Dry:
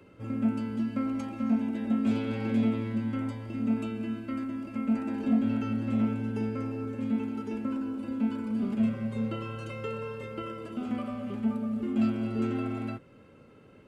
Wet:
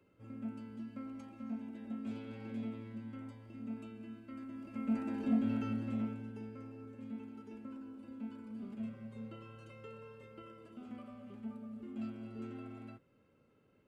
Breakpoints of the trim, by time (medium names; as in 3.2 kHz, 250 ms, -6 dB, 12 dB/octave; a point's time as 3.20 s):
4.26 s -15 dB
4.96 s -6 dB
5.70 s -6 dB
6.42 s -15.5 dB